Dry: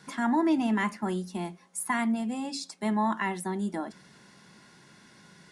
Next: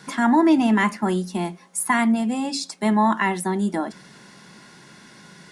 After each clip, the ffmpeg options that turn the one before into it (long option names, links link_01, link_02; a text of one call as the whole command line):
ffmpeg -i in.wav -af "equalizer=frequency=83:width_type=o:width=0.57:gain=-8.5,volume=8.5dB" out.wav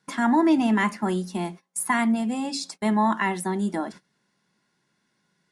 ffmpeg -i in.wav -af "agate=range=-22dB:threshold=-37dB:ratio=16:detection=peak,volume=-3dB" out.wav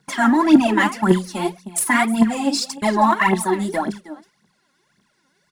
ffmpeg -i in.wav -af "aecho=1:1:316:0.133,aphaser=in_gain=1:out_gain=1:delay=3.9:decay=0.75:speed=1.8:type=triangular,volume=4dB" out.wav